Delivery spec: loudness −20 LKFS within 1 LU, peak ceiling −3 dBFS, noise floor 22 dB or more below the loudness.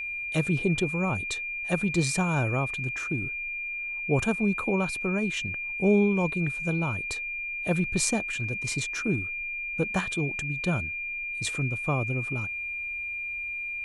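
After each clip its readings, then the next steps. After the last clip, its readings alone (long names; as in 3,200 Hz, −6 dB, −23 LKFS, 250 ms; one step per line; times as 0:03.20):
interfering tone 2,400 Hz; level of the tone −31 dBFS; integrated loudness −28.0 LKFS; sample peak −8.0 dBFS; target loudness −20.0 LKFS
→ notch filter 2,400 Hz, Q 30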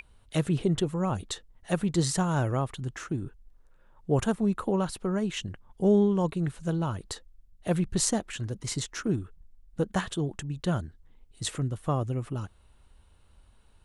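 interfering tone none found; integrated loudness −29.5 LKFS; sample peak −8.0 dBFS; target loudness −20.0 LKFS
→ level +9.5 dB
brickwall limiter −3 dBFS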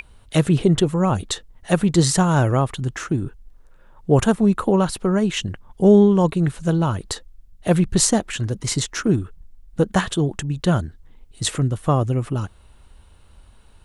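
integrated loudness −20.0 LKFS; sample peak −3.0 dBFS; background noise floor −50 dBFS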